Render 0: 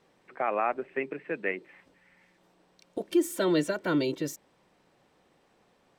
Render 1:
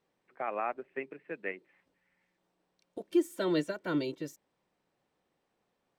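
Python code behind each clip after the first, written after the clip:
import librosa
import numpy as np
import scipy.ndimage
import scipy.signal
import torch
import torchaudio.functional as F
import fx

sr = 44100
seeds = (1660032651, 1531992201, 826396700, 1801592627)

y = fx.upward_expand(x, sr, threshold_db=-42.0, expansion=1.5)
y = F.gain(torch.from_numpy(y), -2.0).numpy()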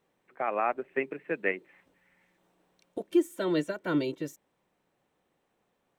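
y = fx.peak_eq(x, sr, hz=4800.0, db=-6.0, octaves=0.45)
y = fx.rider(y, sr, range_db=4, speed_s=0.5)
y = F.gain(torch.from_numpy(y), 4.5).numpy()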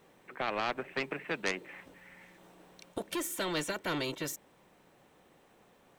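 y = 10.0 ** (-19.0 / 20.0) * np.tanh(x / 10.0 ** (-19.0 / 20.0))
y = fx.spectral_comp(y, sr, ratio=2.0)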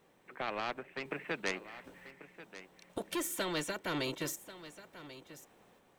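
y = fx.tremolo_random(x, sr, seeds[0], hz=3.8, depth_pct=55)
y = y + 10.0 ** (-15.0 / 20.0) * np.pad(y, (int(1088 * sr / 1000.0), 0))[:len(y)]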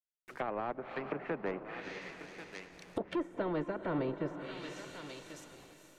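y = fx.delta_hold(x, sr, step_db=-55.5)
y = fx.echo_diffused(y, sr, ms=468, feedback_pct=44, wet_db=-11.0)
y = fx.env_lowpass_down(y, sr, base_hz=1000.0, full_db=-35.5)
y = F.gain(torch.from_numpy(y), 3.0).numpy()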